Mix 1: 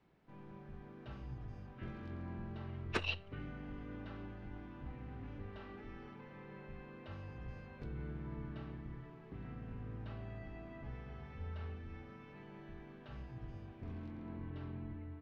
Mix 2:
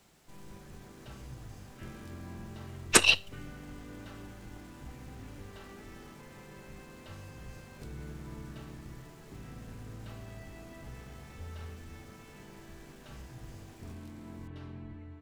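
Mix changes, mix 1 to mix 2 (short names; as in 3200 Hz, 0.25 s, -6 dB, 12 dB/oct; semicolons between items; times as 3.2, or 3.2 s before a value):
speech +11.5 dB; master: remove air absorption 270 m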